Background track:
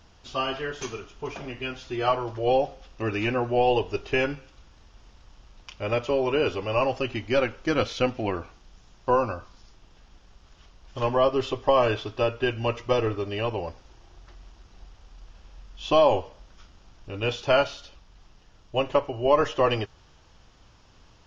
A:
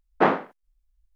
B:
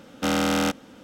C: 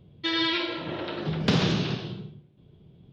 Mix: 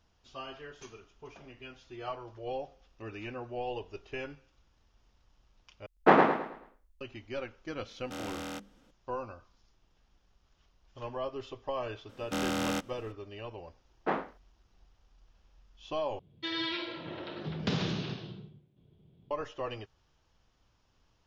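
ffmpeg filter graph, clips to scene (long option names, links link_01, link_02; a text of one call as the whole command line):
ffmpeg -i bed.wav -i cue0.wav -i cue1.wav -i cue2.wav -filter_complex "[1:a]asplit=2[link_01][link_02];[2:a]asplit=2[link_03][link_04];[0:a]volume=-15dB[link_05];[link_01]aecho=1:1:108|216|324|432|540:0.596|0.214|0.0772|0.0278|0.01[link_06];[link_03]bandreject=frequency=50:width_type=h:width=6,bandreject=frequency=100:width_type=h:width=6,bandreject=frequency=150:width_type=h:width=6,bandreject=frequency=200:width_type=h:width=6,bandreject=frequency=250:width_type=h:width=6,bandreject=frequency=300:width_type=h:width=6,bandreject=frequency=350:width_type=h:width=6,bandreject=frequency=400:width_type=h:width=6,bandreject=frequency=450:width_type=h:width=6,bandreject=frequency=500:width_type=h:width=6[link_07];[3:a]aresample=16000,aresample=44100[link_08];[link_05]asplit=3[link_09][link_10][link_11];[link_09]atrim=end=5.864[link_12];[link_06]atrim=end=1.15,asetpts=PTS-STARTPTS,volume=-1.5dB[link_13];[link_10]atrim=start=7.006:end=16.194[link_14];[link_08]atrim=end=3.12,asetpts=PTS-STARTPTS,volume=-8.5dB[link_15];[link_11]atrim=start=19.306[link_16];[link_07]atrim=end=1.03,asetpts=PTS-STARTPTS,volume=-16.5dB,afade=type=in:duration=0.004:curve=hsin,afade=type=out:start_time=1.026:duration=0.004:curve=hsin,adelay=7880[link_17];[link_04]atrim=end=1.03,asetpts=PTS-STARTPTS,volume=-9dB,afade=type=in:duration=0.004:curve=hsin,afade=type=out:start_time=1.026:duration=0.004:curve=hsin,adelay=12090[link_18];[link_02]atrim=end=1.15,asetpts=PTS-STARTPTS,volume=-12dB,afade=type=in:duration=0.004:curve=hsin,afade=type=out:start_time=1.146:duration=0.004:curve=hsin,adelay=13860[link_19];[link_12][link_13]acrossfade=duration=0.004:curve1=hsin:curve2=hsin[link_20];[link_20][link_14]acrossfade=duration=0.004:curve1=hsin:curve2=hsin[link_21];[link_21][link_15]acrossfade=duration=0.004:curve1=hsin:curve2=hsin[link_22];[link_22][link_16]acrossfade=duration=0.004:curve1=hsin:curve2=hsin[link_23];[link_23][link_17][link_18][link_19]amix=inputs=4:normalize=0" out.wav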